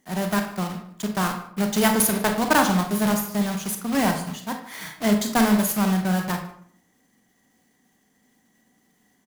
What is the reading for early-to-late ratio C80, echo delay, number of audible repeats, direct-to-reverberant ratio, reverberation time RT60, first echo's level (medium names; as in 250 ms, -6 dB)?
10.5 dB, 151 ms, 1, 4.5 dB, 0.60 s, -20.0 dB